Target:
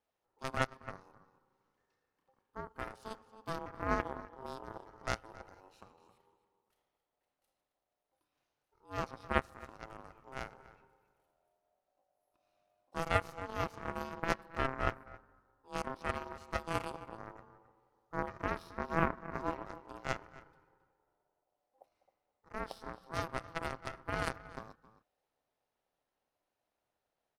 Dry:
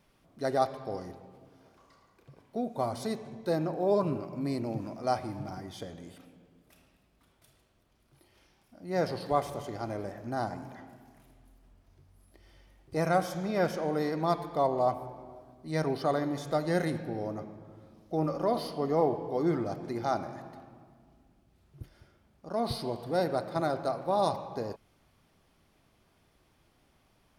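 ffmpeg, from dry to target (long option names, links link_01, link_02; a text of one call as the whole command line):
ffmpeg -i in.wav -filter_complex "[0:a]asplit=2[link_01][link_02];[link_02]adelay=268.2,volume=-10dB,highshelf=frequency=4000:gain=-6.04[link_03];[link_01][link_03]amix=inputs=2:normalize=0,aeval=exprs='0.237*(cos(1*acos(clip(val(0)/0.237,-1,1)))-cos(1*PI/2))+0.0335*(cos(2*acos(clip(val(0)/0.237,-1,1)))-cos(2*PI/2))+0.075*(cos(3*acos(clip(val(0)/0.237,-1,1)))-cos(3*PI/2))+0.0237*(cos(4*acos(clip(val(0)/0.237,-1,1)))-cos(4*PI/2))+0.00168*(cos(5*acos(clip(val(0)/0.237,-1,1)))-cos(5*PI/2))':channel_layout=same,aeval=exprs='val(0)*sin(2*PI*660*n/s)':channel_layout=same,volume=4dB" out.wav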